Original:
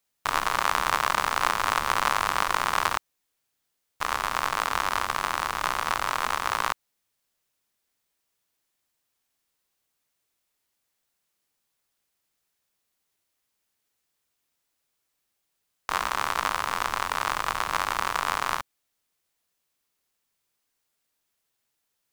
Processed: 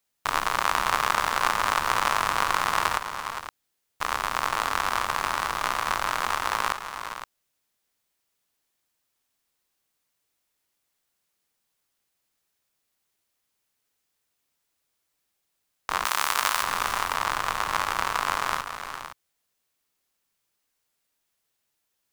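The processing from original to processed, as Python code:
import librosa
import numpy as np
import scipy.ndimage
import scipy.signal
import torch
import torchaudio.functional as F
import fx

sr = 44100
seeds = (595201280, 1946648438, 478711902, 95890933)

y = fx.tilt_eq(x, sr, slope=3.0, at=(16.05, 16.63))
y = fx.echo_multitap(y, sr, ms=(410, 516), db=(-11.0, -11.0))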